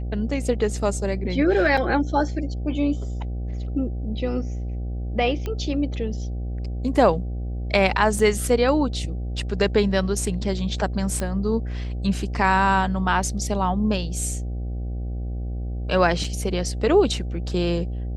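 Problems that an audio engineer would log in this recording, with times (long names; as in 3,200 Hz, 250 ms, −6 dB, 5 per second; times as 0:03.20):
mains buzz 60 Hz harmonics 13 −28 dBFS
0:01.77: drop-out 4.6 ms
0:05.46: click −16 dBFS
0:08.19: drop-out 3.8 ms
0:11.20: click −13 dBFS
0:16.24: drop-out 4.5 ms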